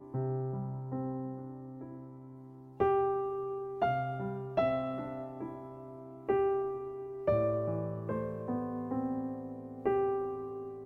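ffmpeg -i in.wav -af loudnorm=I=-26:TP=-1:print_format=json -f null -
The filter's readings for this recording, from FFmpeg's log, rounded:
"input_i" : "-35.0",
"input_tp" : "-17.7",
"input_lra" : "2.1",
"input_thresh" : "-45.5",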